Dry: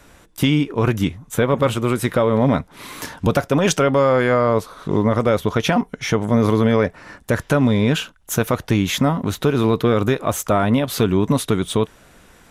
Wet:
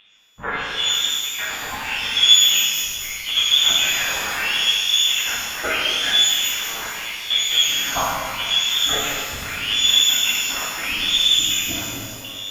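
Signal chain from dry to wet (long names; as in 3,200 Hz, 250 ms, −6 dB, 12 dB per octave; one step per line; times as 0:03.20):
delay that plays each chunk backwards 215 ms, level −10 dB
noise reduction from a noise print of the clip's start 20 dB
reversed playback
upward compression, threshold −29 dBFS
reversed playback
hum with harmonics 100 Hz, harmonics 5, −34 dBFS −3 dB per octave
tube saturation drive 23 dB, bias 0.4
auto-filter high-pass sine 0.78 Hz 400–3,000 Hz
voice inversion scrambler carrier 3,900 Hz
reverb with rising layers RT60 1.8 s, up +12 semitones, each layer −8 dB, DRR −5.5 dB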